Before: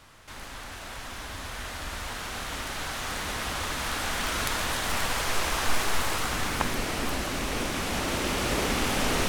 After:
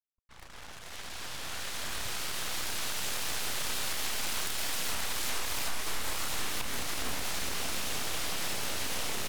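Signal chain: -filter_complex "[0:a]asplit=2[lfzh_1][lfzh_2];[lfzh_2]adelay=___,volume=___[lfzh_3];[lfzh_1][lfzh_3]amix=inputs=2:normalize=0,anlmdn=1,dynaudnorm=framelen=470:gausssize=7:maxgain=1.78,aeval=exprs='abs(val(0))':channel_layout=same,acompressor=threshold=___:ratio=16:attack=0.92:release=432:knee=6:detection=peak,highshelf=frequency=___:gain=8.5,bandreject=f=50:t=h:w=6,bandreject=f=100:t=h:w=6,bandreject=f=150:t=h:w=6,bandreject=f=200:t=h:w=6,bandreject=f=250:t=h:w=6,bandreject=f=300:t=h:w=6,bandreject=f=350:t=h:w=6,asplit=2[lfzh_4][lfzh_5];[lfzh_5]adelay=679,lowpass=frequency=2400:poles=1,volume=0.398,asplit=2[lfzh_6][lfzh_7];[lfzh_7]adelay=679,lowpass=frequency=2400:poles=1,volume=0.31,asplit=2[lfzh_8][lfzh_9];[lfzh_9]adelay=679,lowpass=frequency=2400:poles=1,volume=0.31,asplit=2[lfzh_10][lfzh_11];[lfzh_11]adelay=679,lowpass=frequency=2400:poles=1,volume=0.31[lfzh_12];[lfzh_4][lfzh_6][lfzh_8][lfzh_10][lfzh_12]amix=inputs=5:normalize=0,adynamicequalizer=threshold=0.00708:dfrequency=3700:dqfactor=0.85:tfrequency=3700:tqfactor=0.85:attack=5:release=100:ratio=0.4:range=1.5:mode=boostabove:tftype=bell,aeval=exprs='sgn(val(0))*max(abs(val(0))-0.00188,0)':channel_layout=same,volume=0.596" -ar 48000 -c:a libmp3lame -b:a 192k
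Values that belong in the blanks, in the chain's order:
30, 0.708, 0.0794, 6400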